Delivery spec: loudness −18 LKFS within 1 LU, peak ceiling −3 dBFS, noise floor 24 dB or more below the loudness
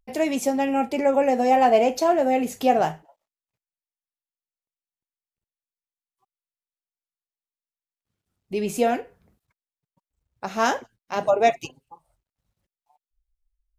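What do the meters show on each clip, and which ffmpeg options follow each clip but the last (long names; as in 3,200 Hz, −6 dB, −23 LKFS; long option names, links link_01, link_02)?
integrated loudness −22.0 LKFS; sample peak −5.0 dBFS; target loudness −18.0 LKFS
→ -af "volume=4dB,alimiter=limit=-3dB:level=0:latency=1"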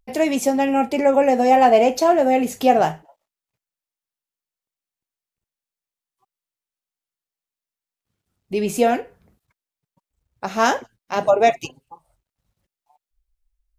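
integrated loudness −18.5 LKFS; sample peak −3.0 dBFS; background noise floor −91 dBFS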